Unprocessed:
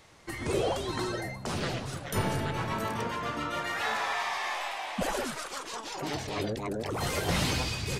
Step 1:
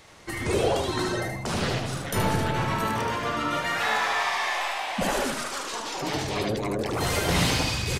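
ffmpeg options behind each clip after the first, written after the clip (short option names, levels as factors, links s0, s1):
-filter_complex "[0:a]bandreject=f=48.08:t=h:w=4,bandreject=f=96.16:t=h:w=4,bandreject=f=144.24:t=h:w=4,bandreject=f=192.32:t=h:w=4,bandreject=f=240.4:t=h:w=4,bandreject=f=288.48:t=h:w=4,bandreject=f=336.56:t=h:w=4,bandreject=f=384.64:t=h:w=4,bandreject=f=432.72:t=h:w=4,bandreject=f=480.8:t=h:w=4,bandreject=f=528.88:t=h:w=4,bandreject=f=576.96:t=h:w=4,bandreject=f=625.04:t=h:w=4,bandreject=f=673.12:t=h:w=4,bandreject=f=721.2:t=h:w=4,bandreject=f=769.28:t=h:w=4,bandreject=f=817.36:t=h:w=4,bandreject=f=865.44:t=h:w=4,bandreject=f=913.52:t=h:w=4,bandreject=f=961.6:t=h:w=4,bandreject=f=1009.68:t=h:w=4,bandreject=f=1057.76:t=h:w=4,bandreject=f=1105.84:t=h:w=4,bandreject=f=1153.92:t=h:w=4,bandreject=f=1202:t=h:w=4,bandreject=f=1250.08:t=h:w=4,bandreject=f=1298.16:t=h:w=4,bandreject=f=1346.24:t=h:w=4,asplit=2[s0][s1];[s1]asoftclip=type=tanh:threshold=0.02,volume=0.251[s2];[s0][s2]amix=inputs=2:normalize=0,aecho=1:1:75:0.596,volume=1.5"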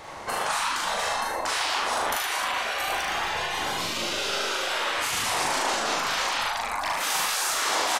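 -filter_complex "[0:a]afftfilt=real='re*lt(hypot(re,im),0.0562)':imag='im*lt(hypot(re,im),0.0562)':win_size=1024:overlap=0.75,equalizer=f=850:t=o:w=1.7:g=12,asplit=2[s0][s1];[s1]adelay=40,volume=0.794[s2];[s0][s2]amix=inputs=2:normalize=0,volume=1.41"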